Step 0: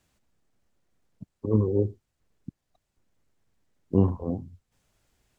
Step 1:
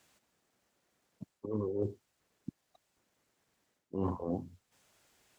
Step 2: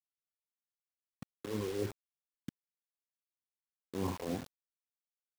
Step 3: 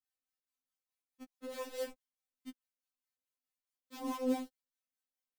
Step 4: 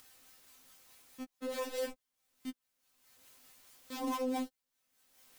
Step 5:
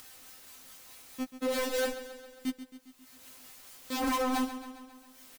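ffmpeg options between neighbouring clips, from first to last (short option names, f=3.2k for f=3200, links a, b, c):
-af "highpass=f=420:p=1,areverse,acompressor=threshold=-35dB:ratio=12,areverse,volume=5dB"
-af "equalizer=f=4.5k:t=o:w=1.7:g=12.5,acrusher=bits=6:mix=0:aa=0.000001,volume=-2.5dB"
-filter_complex "[0:a]acrossover=split=540[a][b];[a]aeval=exprs='val(0)*(1-0.7/2+0.7/2*cos(2*PI*4.7*n/s))':c=same[c];[b]aeval=exprs='val(0)*(1-0.7/2-0.7/2*cos(2*PI*4.7*n/s))':c=same[d];[c][d]amix=inputs=2:normalize=0,afftfilt=real='re*3.46*eq(mod(b,12),0)':imag='im*3.46*eq(mod(b,12),0)':win_size=2048:overlap=0.75,volume=4.5dB"
-af "acompressor=mode=upward:threshold=-45dB:ratio=2.5,alimiter=level_in=9dB:limit=-24dB:level=0:latency=1:release=19,volume=-9dB,volume=5.5dB"
-filter_complex "[0:a]aeval=exprs='0.0211*(abs(mod(val(0)/0.0211+3,4)-2)-1)':c=same,asplit=2[a][b];[b]aecho=0:1:135|270|405|540|675|810|945:0.237|0.142|0.0854|0.0512|0.0307|0.0184|0.0111[c];[a][c]amix=inputs=2:normalize=0,volume=9dB"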